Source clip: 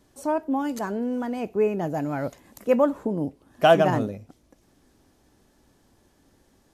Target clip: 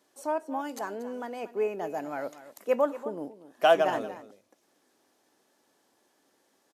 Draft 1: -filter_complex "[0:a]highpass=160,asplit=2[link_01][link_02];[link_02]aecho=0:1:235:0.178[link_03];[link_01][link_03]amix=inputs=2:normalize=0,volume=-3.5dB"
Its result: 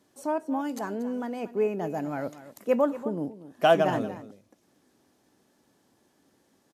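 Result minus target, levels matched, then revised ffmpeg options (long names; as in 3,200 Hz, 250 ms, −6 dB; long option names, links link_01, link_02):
125 Hz band +11.5 dB
-filter_complex "[0:a]highpass=410,asplit=2[link_01][link_02];[link_02]aecho=0:1:235:0.178[link_03];[link_01][link_03]amix=inputs=2:normalize=0,volume=-3.5dB"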